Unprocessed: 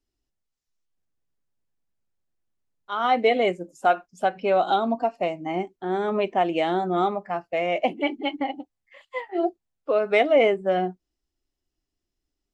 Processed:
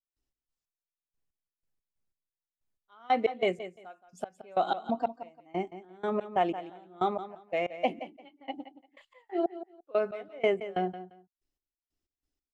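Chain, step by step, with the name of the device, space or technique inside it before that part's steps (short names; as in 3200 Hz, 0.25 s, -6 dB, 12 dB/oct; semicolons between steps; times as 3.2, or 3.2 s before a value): trance gate with a delay (step gate ".x.x...x." 92 bpm -24 dB; feedback echo 0.173 s, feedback 20%, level -13 dB); gain -4.5 dB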